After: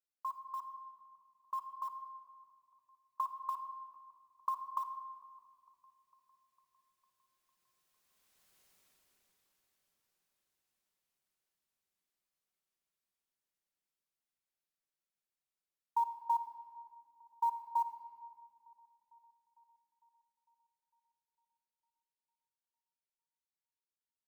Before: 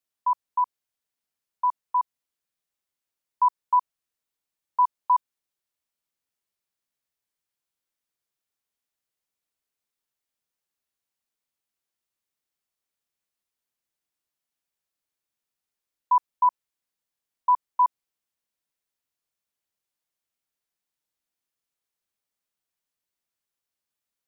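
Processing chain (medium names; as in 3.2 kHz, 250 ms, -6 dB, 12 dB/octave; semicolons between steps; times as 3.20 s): Doppler pass-by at 8.63 s, 22 m/s, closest 7.2 m; compression 10:1, threshold -46 dBFS, peak gain reduction 8.5 dB; short-mantissa float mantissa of 4-bit; on a send: feedback echo behind a low-pass 453 ms, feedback 61%, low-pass 740 Hz, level -18.5 dB; on the sum: simulated room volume 3800 m³, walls mixed, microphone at 1.1 m; trim +16 dB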